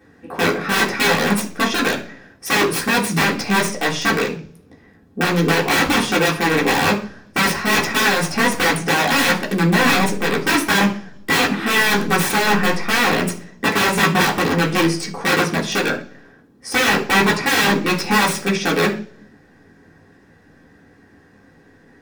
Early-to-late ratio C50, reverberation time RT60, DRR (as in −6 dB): 11.5 dB, 0.45 s, −5.0 dB